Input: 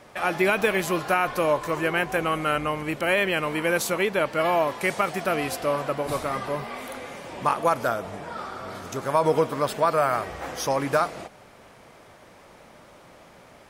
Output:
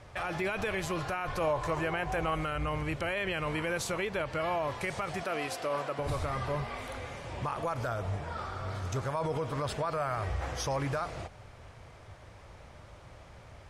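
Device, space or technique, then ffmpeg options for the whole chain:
car stereo with a boomy subwoofer: -filter_complex "[0:a]lowshelf=f=140:t=q:w=1.5:g=13.5,alimiter=limit=-19.5dB:level=0:latency=1:release=59,asettb=1/sr,asplit=3[a][b][c];[a]atrim=end=1.404[d];[b]atrim=start=1.4:end=2.35,asetpts=PTS-STARTPTS,afade=t=in:d=0.004:c=qsin,afade=t=out:st=0.946:d=0.004:c=qsin,equalizer=f=760:t=o:w=0.77:g=5.5[e];[c]atrim=start=2.346[f];[d][e]acrossfade=d=0.004:c1=hsin:c2=qsin[g];[g][f]acrossfade=d=0.004:c1=qsin:c2=hsin,asettb=1/sr,asplit=3[h][i][j];[h]atrim=end=5.234[k];[i]atrim=start=5.23:end=5.99,asetpts=PTS-STARTPTS,afade=t=in:d=0.004:c=qsin,afade=t=out:st=0.756:d=0.004:c=qsin,highpass=250[l];[j]atrim=start=5.986[m];[k][l]acrossfade=d=0.004:c1=hsin:c2=qsin[n];[n][m]acrossfade=d=0.004:c1=qsin:c2=hsin,lowpass=8.6k,volume=-4dB"

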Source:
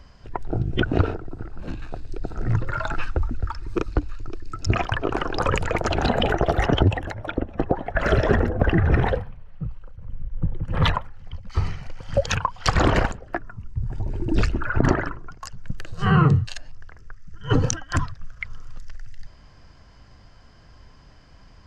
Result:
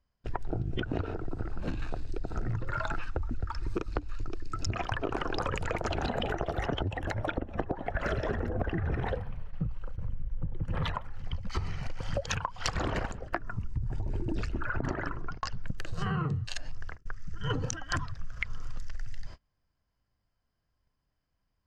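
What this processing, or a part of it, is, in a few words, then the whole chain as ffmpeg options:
serial compression, peaks first: -filter_complex "[0:a]asplit=3[a][b][c];[a]afade=t=out:st=15.21:d=0.02[d];[b]lowpass=f=5.3k:w=0.5412,lowpass=f=5.3k:w=1.3066,afade=t=in:st=15.21:d=0.02,afade=t=out:st=15.65:d=0.02[e];[c]afade=t=in:st=15.65:d=0.02[f];[d][e][f]amix=inputs=3:normalize=0,agate=range=-35dB:threshold=-39dB:ratio=16:detection=peak,acompressor=threshold=-29dB:ratio=6,acompressor=threshold=-34dB:ratio=2.5,volume=5dB"

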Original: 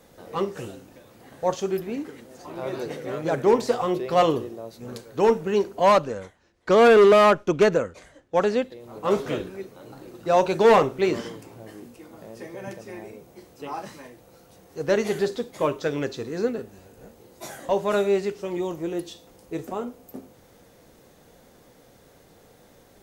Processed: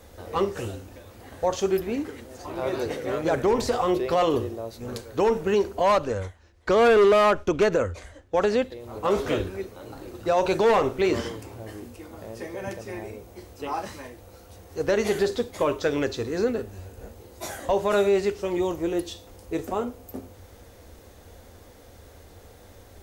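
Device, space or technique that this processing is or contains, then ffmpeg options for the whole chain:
car stereo with a boomy subwoofer: -filter_complex "[0:a]asettb=1/sr,asplit=3[a][b][c];[a]atrim=end=3.244[d];[b]atrim=start=3.24:end=3.73,asetpts=PTS-STARTPTS,afade=t=in:d=0.004:c=qsin,afade=t=out:st=0.486:d=0.004:c=qsin,asubboost=boost=10:cutoff=190[e];[c]atrim=start=3.726[f];[d][e]acrossfade=d=0.004:c1=hsin:c2=qsin[g];[g][f]acrossfade=d=0.004:c1=qsin:c2=hsin,lowshelf=f=110:t=q:w=3:g=7.5,alimiter=limit=-17dB:level=0:latency=1:release=53,volume=3.5dB"

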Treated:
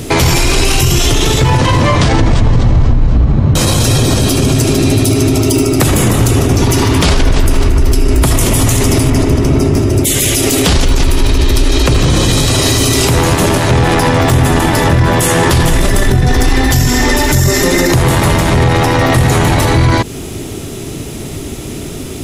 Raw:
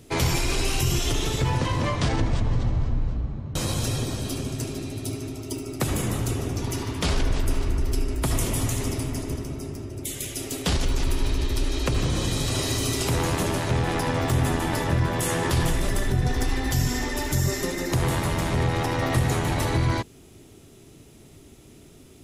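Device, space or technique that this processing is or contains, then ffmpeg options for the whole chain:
loud club master: -filter_complex "[0:a]asettb=1/sr,asplit=3[a][b][c];[a]atrim=end=9.104[d];[b]atrim=start=9.1:end=9.77,asetpts=PTS-STARTPTS,afade=t=in:d=0.004:c=qsin,afade=t=out:st=0.666:d=0.004:c=qsin,highshelf=f=6.5k:g=-10.5[e];[c]atrim=start=9.766[f];[d][e]acrossfade=d=0.004:c1=hsin:c2=qsin[g];[g][f]acrossfade=d=0.004:c1=qsin:c2=hsin,acompressor=threshold=-28dB:ratio=2,asoftclip=type=hard:threshold=-18.5dB,alimiter=level_in=27dB:limit=-1dB:release=50:level=0:latency=1,volume=-1dB"

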